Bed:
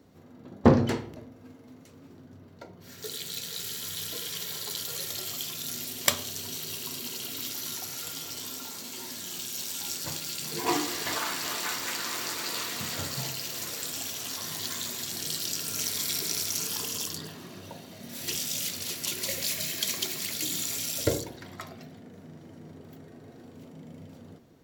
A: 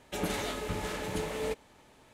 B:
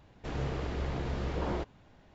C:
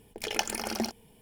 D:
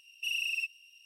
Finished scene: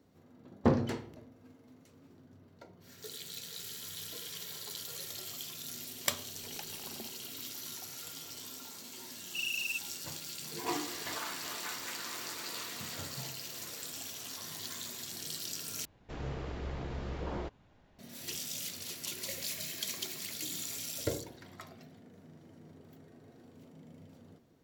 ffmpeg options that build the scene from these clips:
-filter_complex "[0:a]volume=-8dB[a];[4:a]lowpass=8k[b];[a]asplit=2[c][d];[c]atrim=end=15.854[e];[2:a]atrim=end=2.14,asetpts=PTS-STARTPTS,volume=-5dB[f];[d]atrim=start=17.986[g];[3:a]atrim=end=1.21,asetpts=PTS-STARTPTS,volume=-18dB,afade=t=in:d=0.004:c=hsin,afade=t=out:st=1.206:d=0.004:c=hsin,adelay=6200[h];[b]atrim=end=1.05,asetpts=PTS-STARTPTS,volume=-3dB,afade=t=in:d=0.004:c=hsin,afade=t=out:st=1.046:d=0.004:c=hsin,adelay=9120[i];[e][f]acrossfade=d=0.004:c1=hsin:c2=hsin[j];[j][g]acrossfade=d=0.004:c1=hsin:c2=hsin[k];[k][h][i]amix=inputs=3:normalize=0"

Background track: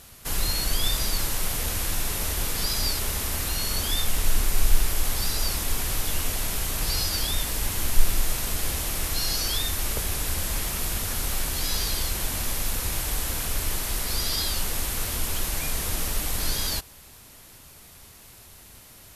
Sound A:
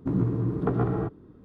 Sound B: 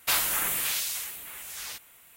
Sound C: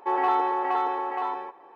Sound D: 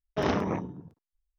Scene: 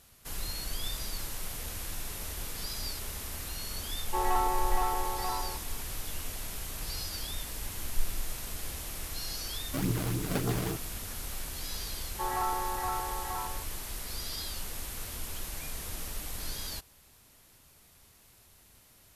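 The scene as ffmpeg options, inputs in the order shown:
-filter_complex "[3:a]asplit=2[a][b];[0:a]volume=-11dB[c];[1:a]acrusher=samples=29:mix=1:aa=0.000001:lfo=1:lforange=46.4:lforate=3.5[d];[b]lowpass=f=1.6k:t=q:w=2.2[e];[a]atrim=end=1.75,asetpts=PTS-STARTPTS,volume=-6dB,afade=t=in:d=0.004:c=hsin,afade=t=out:st=1.746:d=0.004:c=hsin,adelay=4070[f];[d]atrim=end=1.44,asetpts=PTS-STARTPTS,volume=-6dB,afade=t=in:d=0.004:c=hsin,afade=t=out:st=1.436:d=0.004:c=hsin,adelay=9680[g];[e]atrim=end=1.75,asetpts=PTS-STARTPTS,volume=-11.5dB,afade=t=in:d=0.004:c=hsin,afade=t=out:st=1.746:d=0.004:c=hsin,adelay=12130[h];[c][f][g][h]amix=inputs=4:normalize=0"

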